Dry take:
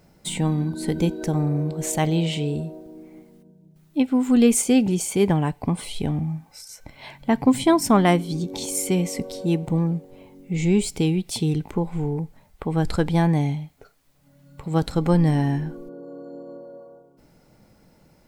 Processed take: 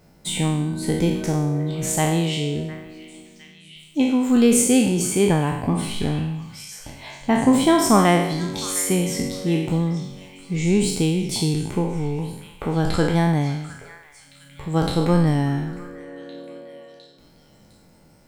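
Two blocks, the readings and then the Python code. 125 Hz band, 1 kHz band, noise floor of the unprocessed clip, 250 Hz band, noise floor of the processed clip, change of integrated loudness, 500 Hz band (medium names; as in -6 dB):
+0.5 dB, +3.0 dB, -57 dBFS, +1.0 dB, -53 dBFS, +1.5 dB, +2.0 dB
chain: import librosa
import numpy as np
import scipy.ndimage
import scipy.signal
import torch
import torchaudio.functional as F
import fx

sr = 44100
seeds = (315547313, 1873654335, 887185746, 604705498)

y = fx.spec_trails(x, sr, decay_s=0.82)
y = fx.echo_stepped(y, sr, ms=707, hz=1700.0, octaves=0.7, feedback_pct=70, wet_db=-11.5)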